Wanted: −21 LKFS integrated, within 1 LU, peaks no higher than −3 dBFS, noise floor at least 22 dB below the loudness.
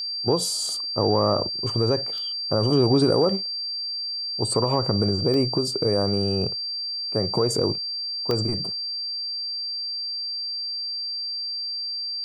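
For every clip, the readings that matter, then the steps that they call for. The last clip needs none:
number of dropouts 3; longest dropout 1.1 ms; interfering tone 4,700 Hz; level of the tone −27 dBFS; integrated loudness −23.5 LKFS; sample peak −7.5 dBFS; target loudness −21.0 LKFS
→ repair the gap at 0:02.18/0:05.34/0:08.31, 1.1 ms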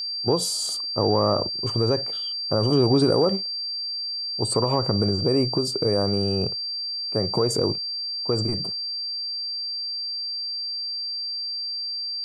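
number of dropouts 0; interfering tone 4,700 Hz; level of the tone −27 dBFS
→ notch filter 4,700 Hz, Q 30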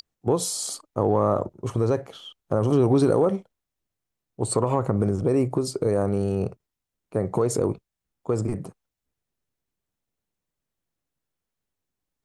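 interfering tone none found; integrated loudness −24.5 LKFS; sample peak −8.5 dBFS; target loudness −21.0 LKFS
→ level +3.5 dB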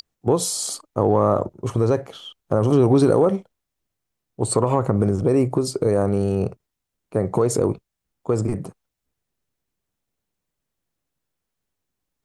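integrated loudness −21.0 LKFS; sample peak −5.0 dBFS; background noise floor −82 dBFS

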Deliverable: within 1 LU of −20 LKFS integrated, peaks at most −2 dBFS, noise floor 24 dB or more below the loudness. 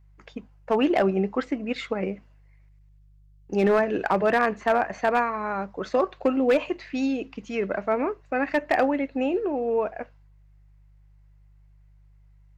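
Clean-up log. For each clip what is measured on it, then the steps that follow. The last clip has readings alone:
share of clipped samples 0.3%; peaks flattened at −13.5 dBFS; mains hum 50 Hz; hum harmonics up to 150 Hz; level of the hum −52 dBFS; integrated loudness −25.0 LKFS; sample peak −13.5 dBFS; target loudness −20.0 LKFS
→ clipped peaks rebuilt −13.5 dBFS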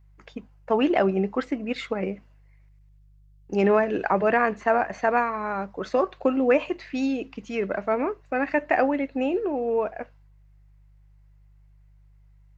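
share of clipped samples 0.0%; mains hum 50 Hz; hum harmonics up to 150 Hz; level of the hum −52 dBFS
→ hum removal 50 Hz, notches 3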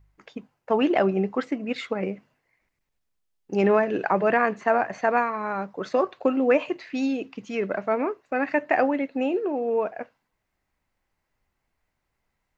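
mains hum none found; integrated loudness −25.0 LKFS; sample peak −8.5 dBFS; target loudness −20.0 LKFS
→ level +5 dB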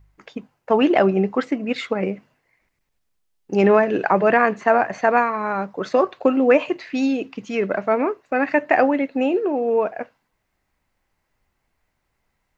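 integrated loudness −20.0 LKFS; sample peak −3.5 dBFS; background noise floor −74 dBFS

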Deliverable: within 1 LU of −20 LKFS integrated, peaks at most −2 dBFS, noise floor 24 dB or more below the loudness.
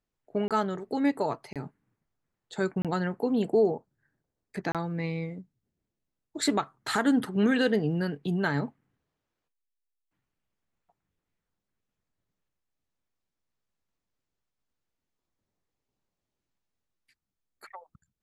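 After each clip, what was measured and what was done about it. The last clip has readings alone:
number of dropouts 4; longest dropout 27 ms; integrated loudness −28.5 LKFS; sample peak −12.5 dBFS; target loudness −20.0 LKFS
→ repair the gap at 0:00.48/0:01.53/0:02.82/0:04.72, 27 ms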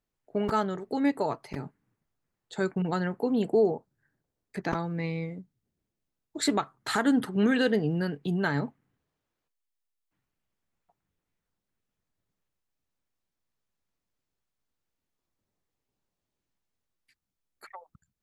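number of dropouts 0; integrated loudness −28.5 LKFS; sample peak −12.5 dBFS; target loudness −20.0 LKFS
→ level +8.5 dB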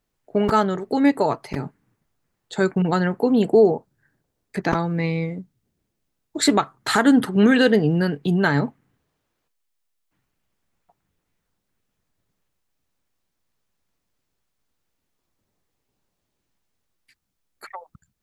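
integrated loudness −20.0 LKFS; sample peak −4.0 dBFS; background noise floor −77 dBFS

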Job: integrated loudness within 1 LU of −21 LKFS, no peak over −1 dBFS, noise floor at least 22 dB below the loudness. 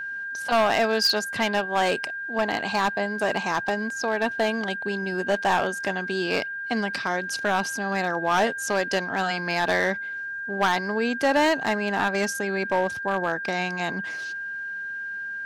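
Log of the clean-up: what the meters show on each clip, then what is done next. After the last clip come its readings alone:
share of clipped samples 1.1%; peaks flattened at −15.5 dBFS; interfering tone 1,600 Hz; level of the tone −30 dBFS; integrated loudness −25.0 LKFS; sample peak −15.5 dBFS; target loudness −21.0 LKFS
→ clipped peaks rebuilt −15.5 dBFS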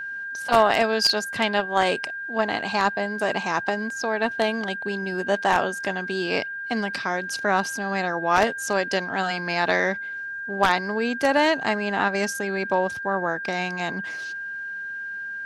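share of clipped samples 0.0%; interfering tone 1,600 Hz; level of the tone −30 dBFS
→ notch filter 1,600 Hz, Q 30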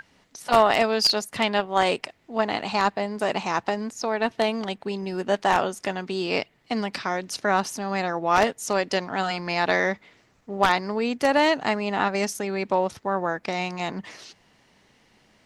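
interfering tone none found; integrated loudness −24.5 LKFS; sample peak −6.0 dBFS; target loudness −21.0 LKFS
→ level +3.5 dB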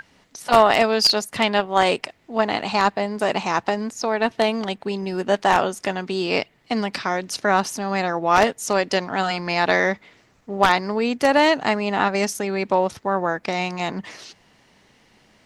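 integrated loudness −21.0 LKFS; sample peak −2.5 dBFS; background noise floor −58 dBFS

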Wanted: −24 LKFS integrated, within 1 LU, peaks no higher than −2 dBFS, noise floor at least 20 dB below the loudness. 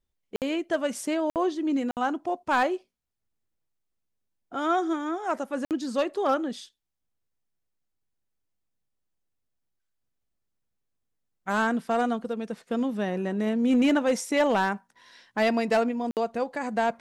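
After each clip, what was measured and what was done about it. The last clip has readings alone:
share of clipped samples 0.4%; peaks flattened at −16.5 dBFS; number of dropouts 5; longest dropout 58 ms; integrated loudness −27.0 LKFS; sample peak −16.5 dBFS; target loudness −24.0 LKFS
→ clipped peaks rebuilt −16.5 dBFS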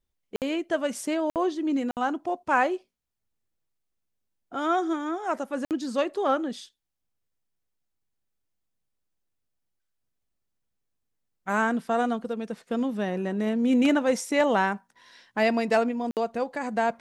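share of clipped samples 0.0%; number of dropouts 5; longest dropout 58 ms
→ repair the gap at 0:00.36/0:01.30/0:01.91/0:05.65/0:16.11, 58 ms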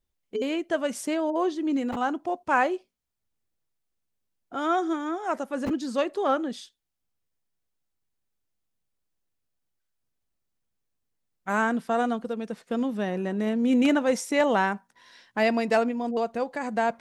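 number of dropouts 0; integrated loudness −26.5 LKFS; sample peak −10.0 dBFS; target loudness −24.0 LKFS
→ level +2.5 dB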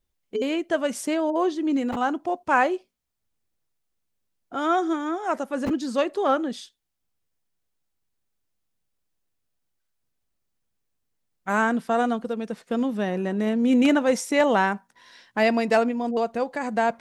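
integrated loudness −24.0 LKFS; sample peak −7.5 dBFS; background noise floor −77 dBFS

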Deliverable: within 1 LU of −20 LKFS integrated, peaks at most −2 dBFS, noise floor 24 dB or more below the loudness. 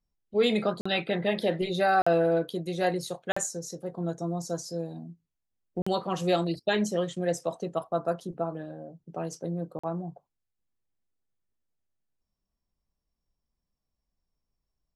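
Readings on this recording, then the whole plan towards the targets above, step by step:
number of dropouts 5; longest dropout 45 ms; integrated loudness −29.5 LKFS; sample peak −13.0 dBFS; target loudness −20.0 LKFS
→ repair the gap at 0:00.81/0:02.02/0:03.32/0:05.82/0:09.79, 45 ms
level +9.5 dB

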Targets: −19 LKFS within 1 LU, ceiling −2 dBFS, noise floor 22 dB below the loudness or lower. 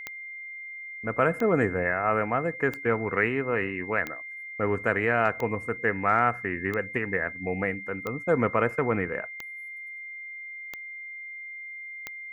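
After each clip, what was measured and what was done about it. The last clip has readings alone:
number of clicks 10; interfering tone 2,100 Hz; level of the tone −37 dBFS; integrated loudness −28.0 LKFS; sample peak −8.5 dBFS; target loudness −19.0 LKFS
→ click removal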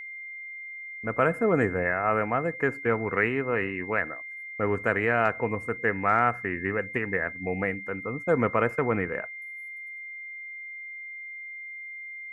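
number of clicks 0; interfering tone 2,100 Hz; level of the tone −37 dBFS
→ notch filter 2,100 Hz, Q 30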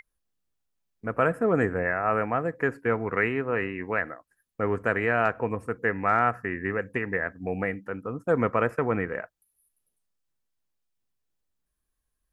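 interfering tone none found; integrated loudness −27.0 LKFS; sample peak −9.0 dBFS; target loudness −19.0 LKFS
→ level +8 dB
brickwall limiter −2 dBFS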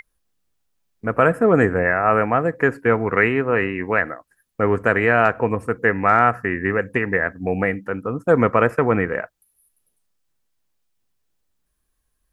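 integrated loudness −19.5 LKFS; sample peak −2.0 dBFS; background noise floor −72 dBFS

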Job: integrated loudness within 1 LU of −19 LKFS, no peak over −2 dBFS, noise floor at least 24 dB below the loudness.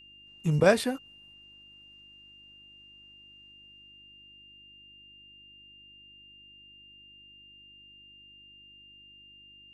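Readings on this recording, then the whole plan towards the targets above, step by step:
mains hum 50 Hz; hum harmonics up to 350 Hz; level of the hum −64 dBFS; interfering tone 2,800 Hz; level of the tone −51 dBFS; integrated loudness −26.0 LKFS; sample peak −7.0 dBFS; target loudness −19.0 LKFS
→ hum removal 50 Hz, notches 7
notch filter 2,800 Hz, Q 30
level +7 dB
brickwall limiter −2 dBFS

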